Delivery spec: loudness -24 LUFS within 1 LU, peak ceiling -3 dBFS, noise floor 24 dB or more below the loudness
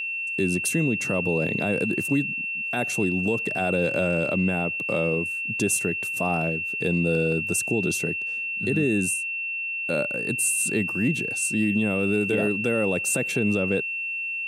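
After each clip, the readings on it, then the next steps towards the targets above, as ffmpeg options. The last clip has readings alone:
steady tone 2700 Hz; tone level -27 dBFS; loudness -24.0 LUFS; peak -11.5 dBFS; loudness target -24.0 LUFS
-> -af "bandreject=f=2.7k:w=30"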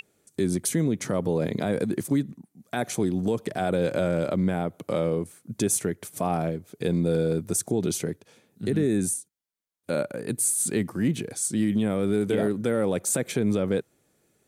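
steady tone none; loudness -26.5 LUFS; peak -13.0 dBFS; loudness target -24.0 LUFS
-> -af "volume=2.5dB"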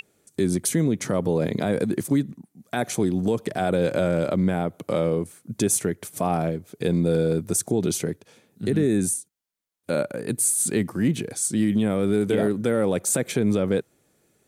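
loudness -24.0 LUFS; peak -10.5 dBFS; noise floor -68 dBFS

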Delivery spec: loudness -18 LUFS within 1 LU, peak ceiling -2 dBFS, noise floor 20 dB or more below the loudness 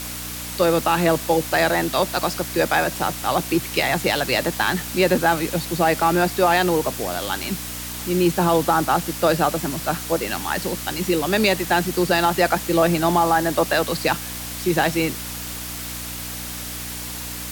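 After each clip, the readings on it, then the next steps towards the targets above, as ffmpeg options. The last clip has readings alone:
hum 60 Hz; harmonics up to 300 Hz; hum level -34 dBFS; noise floor -32 dBFS; noise floor target -41 dBFS; loudness -21.0 LUFS; peak -5.5 dBFS; loudness target -18.0 LUFS
-> -af "bandreject=f=60:t=h:w=4,bandreject=f=120:t=h:w=4,bandreject=f=180:t=h:w=4,bandreject=f=240:t=h:w=4,bandreject=f=300:t=h:w=4"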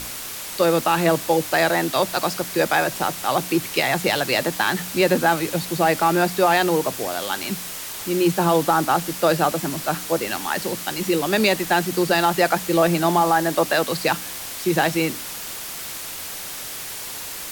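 hum none; noise floor -33 dBFS; noise floor target -41 dBFS
-> -af "afftdn=nr=8:nf=-33"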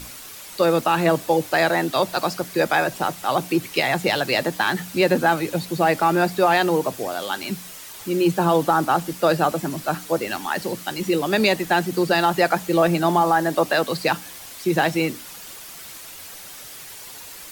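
noise floor -39 dBFS; noise floor target -41 dBFS
-> -af "afftdn=nr=6:nf=-39"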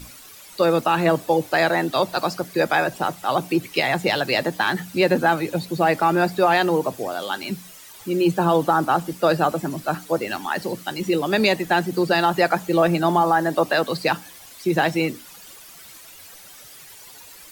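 noise floor -44 dBFS; loudness -21.0 LUFS; peak -6.0 dBFS; loudness target -18.0 LUFS
-> -af "volume=3dB"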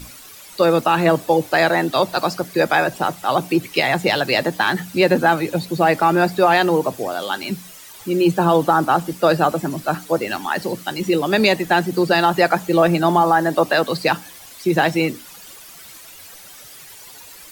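loudness -18.0 LUFS; peak -3.0 dBFS; noise floor -41 dBFS

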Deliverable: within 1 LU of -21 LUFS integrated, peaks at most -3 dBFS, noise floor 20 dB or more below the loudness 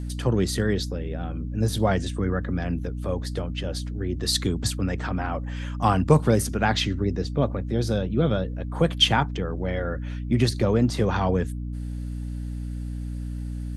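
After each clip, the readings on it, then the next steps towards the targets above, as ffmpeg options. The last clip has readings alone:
hum 60 Hz; harmonics up to 300 Hz; hum level -29 dBFS; loudness -25.5 LUFS; peak -4.5 dBFS; loudness target -21.0 LUFS
-> -af "bandreject=f=60:t=h:w=4,bandreject=f=120:t=h:w=4,bandreject=f=180:t=h:w=4,bandreject=f=240:t=h:w=4,bandreject=f=300:t=h:w=4"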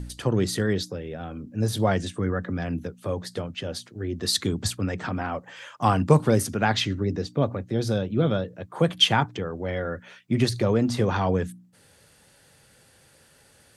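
hum none; loudness -25.5 LUFS; peak -5.0 dBFS; loudness target -21.0 LUFS
-> -af "volume=4.5dB,alimiter=limit=-3dB:level=0:latency=1"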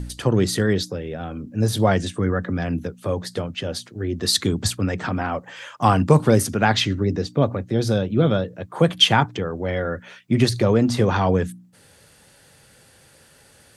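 loudness -21.5 LUFS; peak -3.0 dBFS; noise floor -53 dBFS

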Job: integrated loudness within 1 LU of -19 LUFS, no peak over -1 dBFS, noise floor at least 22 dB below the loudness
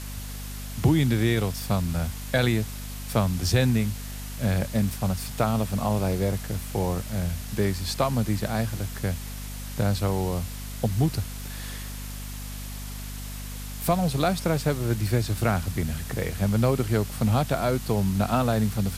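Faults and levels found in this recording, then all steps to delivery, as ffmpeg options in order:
hum 50 Hz; harmonics up to 250 Hz; hum level -34 dBFS; noise floor -36 dBFS; noise floor target -49 dBFS; loudness -27.0 LUFS; peak -9.5 dBFS; loudness target -19.0 LUFS
-> -af "bandreject=f=50:t=h:w=6,bandreject=f=100:t=h:w=6,bandreject=f=150:t=h:w=6,bandreject=f=200:t=h:w=6,bandreject=f=250:t=h:w=6"
-af "afftdn=nr=13:nf=-36"
-af "volume=8dB"

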